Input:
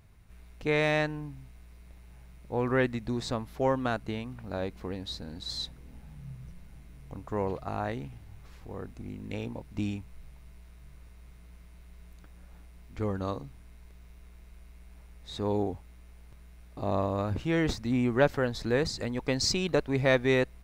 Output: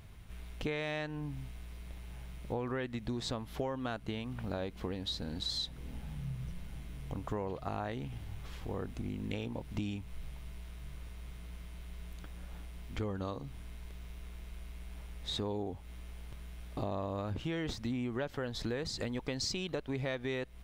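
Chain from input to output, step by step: peaking EQ 3.2 kHz +7 dB 0.35 oct; in parallel at +2 dB: peak limiter -20.5 dBFS, peak gain reduction 10.5 dB; on the sum: compression 6:1, threshold -32 dBFS, peak gain reduction 16.5 dB; trim -2 dB

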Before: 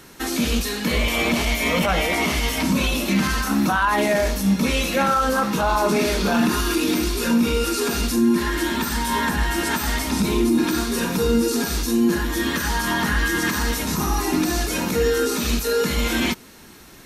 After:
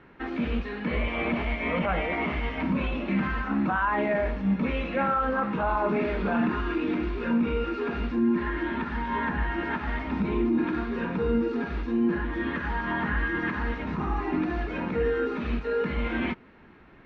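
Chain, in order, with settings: low-pass 2.4 kHz 24 dB/octave; trim -6 dB

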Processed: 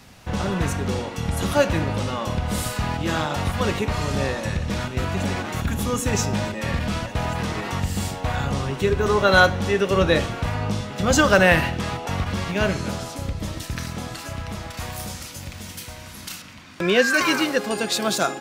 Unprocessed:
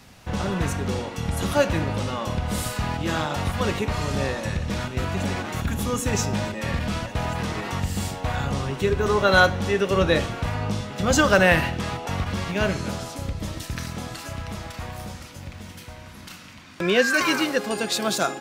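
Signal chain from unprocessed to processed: 14.77–16.42 s: treble shelf 3.9 kHz +11 dB; trim +1.5 dB

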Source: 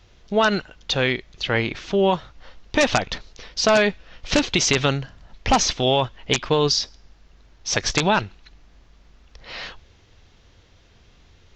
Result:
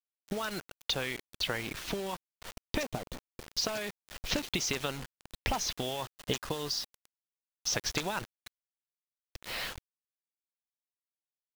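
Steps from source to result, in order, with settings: compression 6:1, threshold -29 dBFS, peak gain reduction 14.5 dB; harmonic-percussive split harmonic -7 dB; 2.83–3.51 s: FFT filter 110 Hz 0 dB, 410 Hz +2 dB, 1.9 kHz -16 dB; bit crusher 7-bit; 6.02–7.75 s: band-stop 2.3 kHz, Q 8.1

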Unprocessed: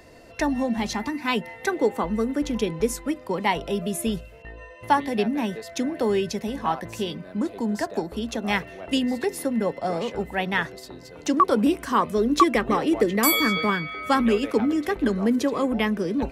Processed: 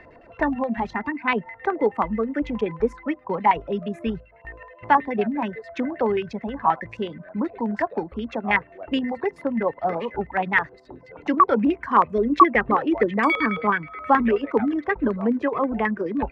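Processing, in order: reverb removal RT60 0.92 s; LFO low-pass square 9.4 Hz 990–2000 Hz

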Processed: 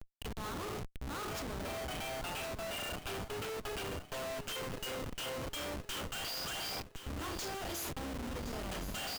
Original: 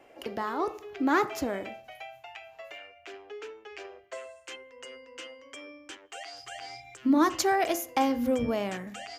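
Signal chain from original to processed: octave divider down 2 oct, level 0 dB; peaking EQ 120 Hz -5.5 dB 0.78 oct; de-hum 366.8 Hz, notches 5; reverse; compression 16:1, threshold -54 dBFS, peak gain reduction 37 dB; reverse; FFT filter 830 Hz 0 dB, 1.4 kHz +11 dB, 2 kHz -3 dB, 2.9 kHz +13 dB; Schroeder reverb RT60 0.38 s, combs from 26 ms, DRR 6.5 dB; Schmitt trigger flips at -53.5 dBFS; feedback delay 1067 ms, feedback 43%, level -11.5 dB; trim +12 dB

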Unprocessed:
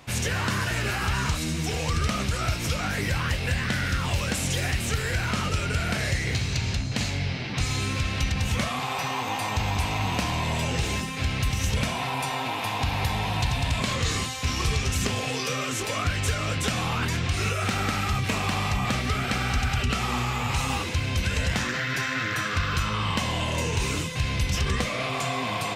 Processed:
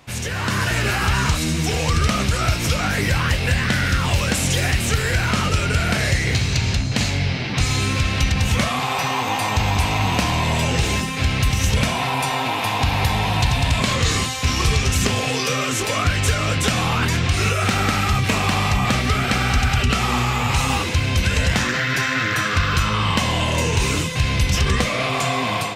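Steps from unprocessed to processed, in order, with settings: level rider gain up to 7 dB

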